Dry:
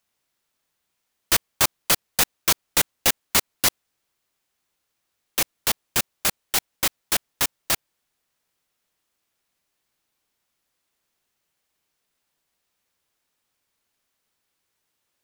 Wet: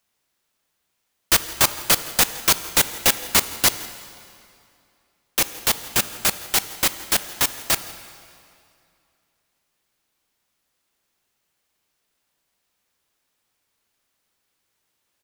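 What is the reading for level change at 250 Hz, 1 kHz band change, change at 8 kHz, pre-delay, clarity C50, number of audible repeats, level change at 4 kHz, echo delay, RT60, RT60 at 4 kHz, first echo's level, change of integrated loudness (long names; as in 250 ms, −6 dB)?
+3.0 dB, +3.0 dB, +2.5 dB, 7 ms, 12.5 dB, 1, +2.5 dB, 166 ms, 2.5 s, 2.1 s, −20.5 dB, +2.5 dB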